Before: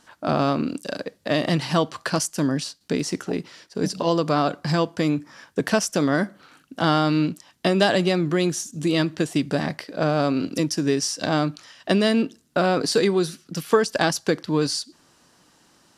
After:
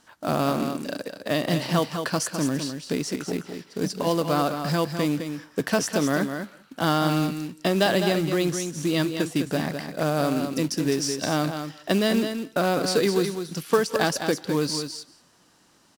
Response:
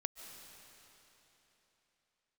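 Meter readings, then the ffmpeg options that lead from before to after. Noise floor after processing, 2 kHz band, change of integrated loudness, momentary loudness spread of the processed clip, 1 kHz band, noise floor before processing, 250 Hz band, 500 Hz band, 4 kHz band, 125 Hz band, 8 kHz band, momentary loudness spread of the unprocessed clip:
-59 dBFS, -2.0 dB, -2.0 dB, 8 LU, -2.0 dB, -60 dBFS, -2.0 dB, -2.0 dB, -2.0 dB, -2.0 dB, -1.5 dB, 9 LU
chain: -filter_complex "[0:a]acrusher=bits=4:mode=log:mix=0:aa=0.000001,aecho=1:1:207:0.422[a];[1:a]atrim=start_sample=2205,atrim=end_sample=6174,asetrate=31752,aresample=44100[b];[a][b]afir=irnorm=-1:irlink=0,volume=-2dB"

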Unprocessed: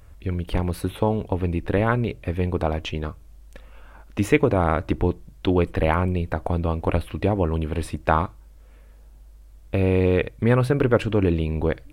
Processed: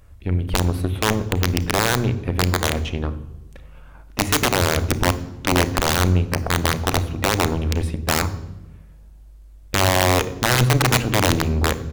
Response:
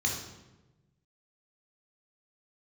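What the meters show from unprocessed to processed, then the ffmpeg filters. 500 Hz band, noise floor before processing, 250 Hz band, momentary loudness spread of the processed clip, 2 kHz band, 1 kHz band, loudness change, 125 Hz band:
-1.5 dB, -47 dBFS, 0.0 dB, 8 LU, +8.0 dB, +4.5 dB, +3.0 dB, +3.0 dB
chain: -filter_complex "[0:a]asplit=2[a][b];[b]adelay=94,lowpass=f=3.3k:p=1,volume=-17.5dB,asplit=2[c][d];[d]adelay=94,lowpass=f=3.3k:p=1,volume=0.28,asplit=2[e][f];[f]adelay=94,lowpass=f=3.3k:p=1,volume=0.28[g];[a][c][e][g]amix=inputs=4:normalize=0,aeval=exprs='0.708*(cos(1*acos(clip(val(0)/0.708,-1,1)))-cos(1*PI/2))+0.112*(cos(3*acos(clip(val(0)/0.708,-1,1)))-cos(3*PI/2))+0.126*(cos(4*acos(clip(val(0)/0.708,-1,1)))-cos(4*PI/2))':c=same,aeval=exprs='(mod(3.98*val(0)+1,2)-1)/3.98':c=same,asplit=2[h][i];[1:a]atrim=start_sample=2205,lowshelf=f=440:g=9,adelay=32[j];[i][j]afir=irnorm=-1:irlink=0,volume=-21.5dB[k];[h][k]amix=inputs=2:normalize=0,volume=4.5dB"

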